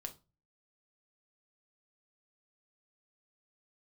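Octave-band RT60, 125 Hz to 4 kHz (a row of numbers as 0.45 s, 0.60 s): 0.55 s, 0.45 s, 0.30 s, 0.30 s, 0.20 s, 0.25 s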